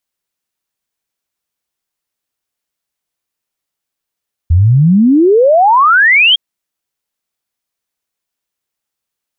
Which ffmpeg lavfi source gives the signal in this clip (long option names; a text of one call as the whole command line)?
ffmpeg -f lavfi -i "aevalsrc='0.596*clip(min(t,1.86-t)/0.01,0,1)*sin(2*PI*79*1.86/log(3300/79)*(exp(log(3300/79)*t/1.86)-1))':duration=1.86:sample_rate=44100" out.wav